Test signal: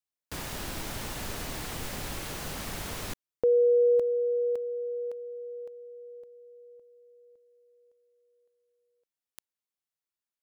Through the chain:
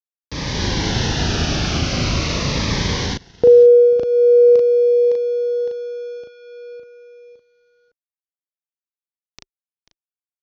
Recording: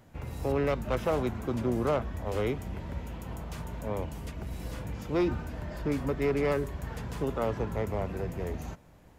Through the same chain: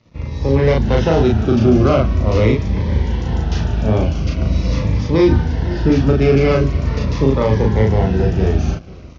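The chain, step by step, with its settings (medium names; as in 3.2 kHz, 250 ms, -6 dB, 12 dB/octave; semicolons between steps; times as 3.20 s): high-pass 62 Hz; doubling 37 ms -2 dB; on a send: delay 490 ms -20 dB; on the sum: crossover distortion -58 dBFS; treble shelf 2.6 kHz +11.5 dB; in parallel at +1 dB: peak limiter -19 dBFS; on the sum: steep low-pass 6.1 kHz 72 dB/octave; level rider gain up to 8.5 dB; tilt EQ -2 dB/octave; Shepard-style phaser falling 0.43 Hz; trim -1 dB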